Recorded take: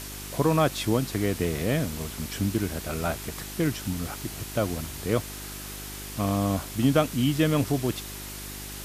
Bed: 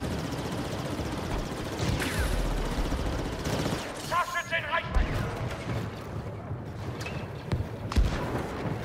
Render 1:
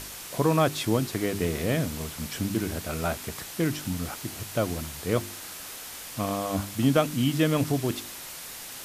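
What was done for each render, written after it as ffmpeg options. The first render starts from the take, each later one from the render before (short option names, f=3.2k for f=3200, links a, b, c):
-af "bandreject=f=50:t=h:w=4,bandreject=f=100:t=h:w=4,bandreject=f=150:t=h:w=4,bandreject=f=200:t=h:w=4,bandreject=f=250:t=h:w=4,bandreject=f=300:t=h:w=4,bandreject=f=350:t=h:w=4,bandreject=f=400:t=h:w=4"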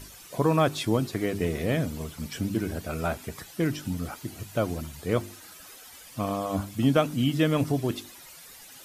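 -af "afftdn=nr=12:nf=-41"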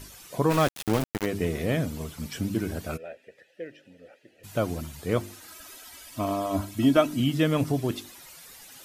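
-filter_complex "[0:a]asplit=3[a][b][c];[a]afade=t=out:st=0.49:d=0.02[d];[b]aeval=exprs='val(0)*gte(abs(val(0)),0.0562)':c=same,afade=t=in:st=0.49:d=0.02,afade=t=out:st=1.25:d=0.02[e];[c]afade=t=in:st=1.25:d=0.02[f];[d][e][f]amix=inputs=3:normalize=0,asplit=3[g][h][i];[g]afade=t=out:st=2.96:d=0.02[j];[h]asplit=3[k][l][m];[k]bandpass=f=530:t=q:w=8,volume=0dB[n];[l]bandpass=f=1.84k:t=q:w=8,volume=-6dB[o];[m]bandpass=f=2.48k:t=q:w=8,volume=-9dB[p];[n][o][p]amix=inputs=3:normalize=0,afade=t=in:st=2.96:d=0.02,afade=t=out:st=4.43:d=0.02[q];[i]afade=t=in:st=4.43:d=0.02[r];[j][q][r]amix=inputs=3:normalize=0,asettb=1/sr,asplit=3[s][t][u];[s]atrim=end=5.484[v];[t]atrim=start=5.48:end=7.2,asetpts=PTS-STARTPTS,afade=t=in:d=0.004:c=qsin,afade=t=out:st=1.716:d=0.004:c=qsin,aecho=1:1:3.1:0.59,atrim=end_sample=75852[w];[u]atrim=start=7.196[x];[v][w]acrossfade=d=0.004:c1=hsin:c2=qsin[y];[y][x]acrossfade=d=0.004:c1=qsin:c2=hsin"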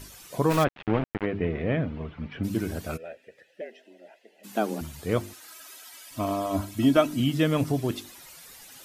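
-filter_complex "[0:a]asplit=3[a][b][c];[a]afade=t=out:st=0.63:d=0.02[d];[b]lowpass=f=2.7k:w=0.5412,lowpass=f=2.7k:w=1.3066,afade=t=in:st=0.63:d=0.02,afade=t=out:st=2.43:d=0.02[e];[c]afade=t=in:st=2.43:d=0.02[f];[d][e][f]amix=inputs=3:normalize=0,asettb=1/sr,asplit=3[g][h][i];[g]atrim=end=3.614[j];[h]atrim=start=3.61:end=4.81,asetpts=PTS-STARTPTS,afade=t=in:d=0.004:c=qsin,afade=t=out:st=1.196:d=0.004:c=qsin,afreqshift=100[k];[i]atrim=start=4.806[l];[j][k]acrossfade=d=0.004:c1=hsin:c2=qsin[m];[m][l]acrossfade=d=0.004:c1=qsin:c2=hsin,asettb=1/sr,asplit=3[n][o][p];[n]atrim=end=5.334[q];[o]atrim=start=5.33:end=6.11,asetpts=PTS-STARTPTS,afade=t=in:d=0.004:c=qsin,afade=t=out:st=0.776:d=0.004:c=qsin,highpass=f=650:p=1[r];[p]atrim=start=6.106[s];[q][r]acrossfade=d=0.004:c1=hsin:c2=qsin[t];[t][s]acrossfade=d=0.004:c1=qsin:c2=hsin"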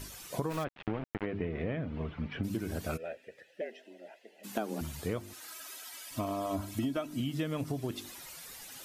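-af "acompressor=threshold=-30dB:ratio=12"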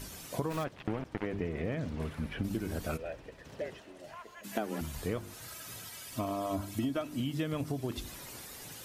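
-filter_complex "[1:a]volume=-21.5dB[a];[0:a][a]amix=inputs=2:normalize=0"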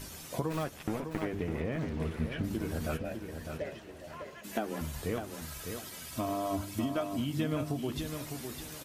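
-filter_complex "[0:a]asplit=2[a][b];[b]adelay=13,volume=-10.5dB[c];[a][c]amix=inputs=2:normalize=0,aecho=1:1:605|1210|1815:0.447|0.125|0.035"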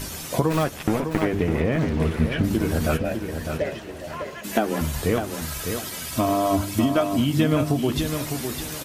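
-af "volume=12dB"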